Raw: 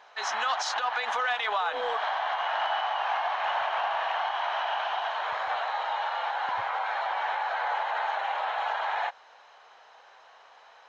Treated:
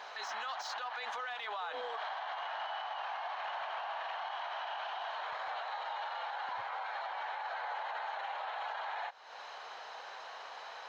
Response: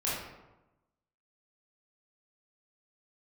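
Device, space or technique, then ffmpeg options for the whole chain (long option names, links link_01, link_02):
broadcast voice chain: -af "highpass=frequency=110:poles=1,deesser=0.9,acompressor=threshold=-45dB:ratio=4,equalizer=frequency=4400:width_type=o:width=0.35:gain=4.5,alimiter=level_in=14.5dB:limit=-24dB:level=0:latency=1:release=27,volume=-14.5dB,volume=7dB"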